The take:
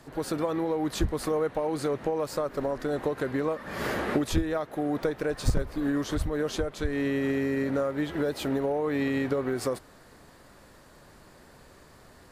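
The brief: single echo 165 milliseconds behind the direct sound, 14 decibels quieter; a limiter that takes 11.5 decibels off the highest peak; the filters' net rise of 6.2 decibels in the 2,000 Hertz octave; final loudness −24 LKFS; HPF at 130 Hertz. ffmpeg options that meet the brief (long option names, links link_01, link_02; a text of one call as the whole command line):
ffmpeg -i in.wav -af "highpass=130,equalizer=frequency=2000:width_type=o:gain=7.5,alimiter=limit=-22.5dB:level=0:latency=1,aecho=1:1:165:0.2,volume=8dB" out.wav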